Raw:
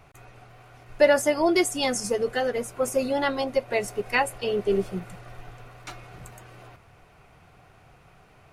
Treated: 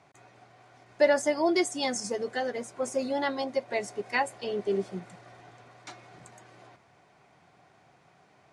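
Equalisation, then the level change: speaker cabinet 190–8400 Hz, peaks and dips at 470 Hz -5 dB, 1300 Hz -6 dB, 2700 Hz -7 dB; -2.5 dB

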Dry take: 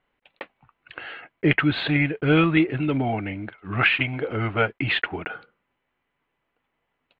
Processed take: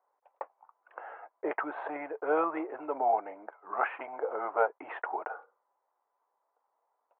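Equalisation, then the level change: HPF 490 Hz 24 dB/oct; ladder low-pass 1100 Hz, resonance 50%; air absorption 110 m; +7.0 dB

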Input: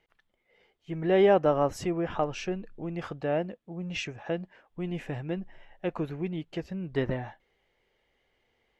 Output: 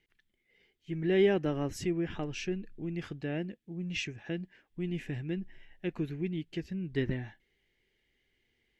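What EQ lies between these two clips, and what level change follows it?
band shelf 810 Hz -13 dB; -1.0 dB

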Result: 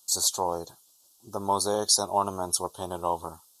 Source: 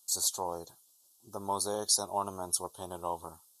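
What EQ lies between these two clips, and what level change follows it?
bell 11000 Hz -5 dB 1 oct; +7.5 dB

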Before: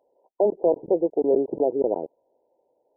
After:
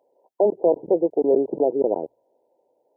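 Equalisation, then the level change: HPF 92 Hz; notches 60/120 Hz; +2.0 dB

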